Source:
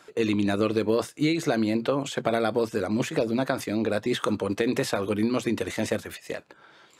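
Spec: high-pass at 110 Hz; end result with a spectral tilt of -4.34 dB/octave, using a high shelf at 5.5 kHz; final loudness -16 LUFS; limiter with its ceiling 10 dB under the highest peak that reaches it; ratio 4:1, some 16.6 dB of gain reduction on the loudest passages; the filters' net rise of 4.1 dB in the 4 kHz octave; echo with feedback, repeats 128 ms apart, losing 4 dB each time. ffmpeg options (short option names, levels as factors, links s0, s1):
-af "highpass=110,equalizer=f=4000:t=o:g=6,highshelf=f=5500:g=-3.5,acompressor=threshold=0.00891:ratio=4,alimiter=level_in=3.16:limit=0.0631:level=0:latency=1,volume=0.316,aecho=1:1:128|256|384|512|640|768|896|1024|1152:0.631|0.398|0.25|0.158|0.0994|0.0626|0.0394|0.0249|0.0157,volume=21.1"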